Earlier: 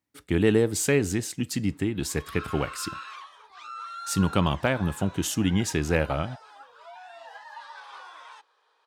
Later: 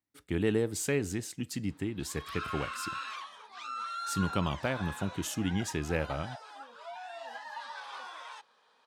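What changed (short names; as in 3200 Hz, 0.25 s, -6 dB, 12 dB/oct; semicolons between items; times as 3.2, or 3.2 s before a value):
speech -7.5 dB; background: remove rippled Chebyshev high-pass 290 Hz, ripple 3 dB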